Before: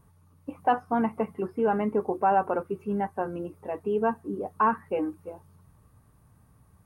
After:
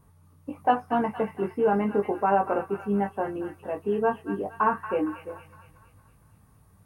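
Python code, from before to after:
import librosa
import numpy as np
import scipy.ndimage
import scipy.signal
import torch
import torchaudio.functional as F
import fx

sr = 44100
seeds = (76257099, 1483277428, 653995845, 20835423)

y = fx.doubler(x, sr, ms=20.0, db=-4.5)
y = fx.echo_wet_highpass(y, sr, ms=231, feedback_pct=50, hz=1700.0, wet_db=-4.5)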